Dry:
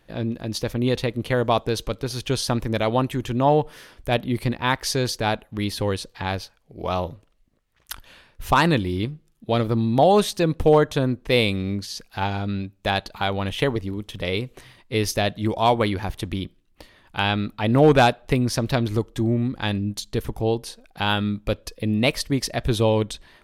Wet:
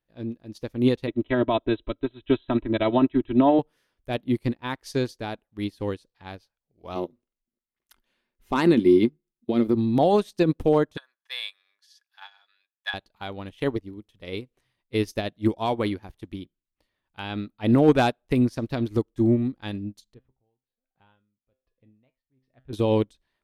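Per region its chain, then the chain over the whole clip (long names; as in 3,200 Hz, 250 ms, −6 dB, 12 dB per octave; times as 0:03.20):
0:01.07–0:03.59: linear-phase brick-wall low-pass 4,100 Hz + comb filter 3.1 ms, depth 82%
0:06.95–0:09.75: parametric band 81 Hz −11 dB 1.1 octaves + hollow resonant body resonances 240/360/2,100 Hz, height 12 dB, ringing for 75 ms
0:10.97–0:12.94: high-pass filter 950 Hz 24 dB per octave + parametric band 5,400 Hz +3 dB 0.26 octaves + hollow resonant body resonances 1,700/3,400 Hz, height 14 dB, ringing for 35 ms
0:20.14–0:22.73: high-frequency loss of the air 440 metres + tuned comb filter 130 Hz, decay 0.29 s, mix 70% + tremolo with a sine in dB 1.2 Hz, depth 20 dB
whole clip: dynamic equaliser 300 Hz, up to +7 dB, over −36 dBFS, Q 1.5; boost into a limiter +8 dB; expander for the loud parts 2.5 to 1, over −24 dBFS; level −6.5 dB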